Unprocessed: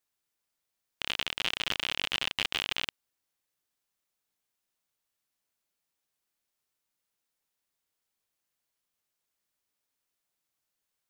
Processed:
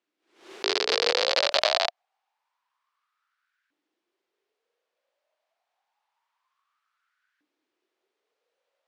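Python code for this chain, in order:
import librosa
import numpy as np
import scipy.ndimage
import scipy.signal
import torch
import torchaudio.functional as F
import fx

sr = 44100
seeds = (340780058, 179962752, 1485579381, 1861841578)

p1 = fx.speed_glide(x, sr, from_pct=161, to_pct=89)
p2 = scipy.signal.sosfilt(scipy.signal.butter(2, 3400.0, 'lowpass', fs=sr, output='sos'), p1)
p3 = fx.backlash(p2, sr, play_db=-53.5)
p4 = p2 + (p3 * librosa.db_to_amplitude(-4.5))
p5 = fx.filter_lfo_highpass(p4, sr, shape='saw_up', hz=0.27, low_hz=290.0, high_hz=1600.0, q=7.9)
p6 = fx.pre_swell(p5, sr, db_per_s=120.0)
y = p6 * librosa.db_to_amplitude(6.5)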